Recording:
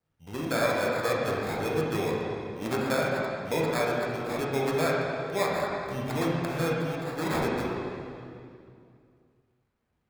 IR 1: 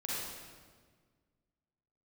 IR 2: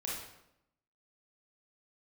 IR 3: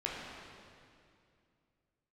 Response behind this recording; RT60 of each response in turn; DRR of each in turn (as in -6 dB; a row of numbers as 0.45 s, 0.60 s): 3; 1.6 s, 0.80 s, 2.4 s; -7.0 dB, -5.5 dB, -5.0 dB